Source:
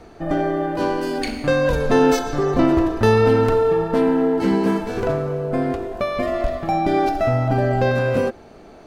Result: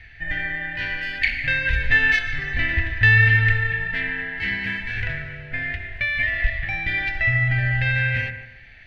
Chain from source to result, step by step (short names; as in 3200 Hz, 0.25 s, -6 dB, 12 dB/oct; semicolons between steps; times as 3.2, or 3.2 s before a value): EQ curve 110 Hz 0 dB, 160 Hz -15 dB, 380 Hz -29 dB, 820 Hz -20 dB, 1200 Hz -25 dB, 1800 Hz +14 dB, 3300 Hz +2 dB, 7500 Hz -22 dB; analogue delay 0.146 s, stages 2048, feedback 31%, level -10 dB; gain +2.5 dB